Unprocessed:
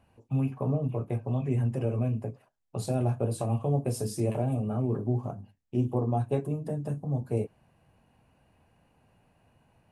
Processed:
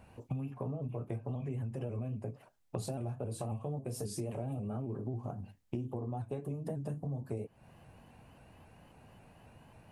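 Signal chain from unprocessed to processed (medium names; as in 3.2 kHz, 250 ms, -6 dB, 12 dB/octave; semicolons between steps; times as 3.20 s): in parallel at -1 dB: peak limiter -25 dBFS, peak gain reduction 9.5 dB; on the sum: compression 16:1, threshold -36 dBFS, peak gain reduction 18 dB; vibrato with a chosen wave saw up 3.7 Hz, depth 100 cents; trim +1.5 dB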